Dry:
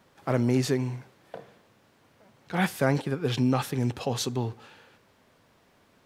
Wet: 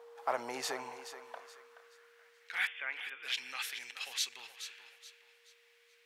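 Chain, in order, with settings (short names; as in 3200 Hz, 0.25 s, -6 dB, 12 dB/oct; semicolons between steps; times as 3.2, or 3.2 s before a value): in parallel at -3 dB: limiter -19 dBFS, peak gain reduction 9.5 dB; 2.67–3.23 on the sum: brick-wall FIR band-pass 160–3600 Hz; whine 470 Hz -36 dBFS; on a send: thinning echo 0.426 s, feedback 34%, high-pass 250 Hz, level -11 dB; on the sum: high-pass sweep 840 Hz -> 2200 Hz, 1.01–2.77; ending taper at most 390 dB/s; gain -8.5 dB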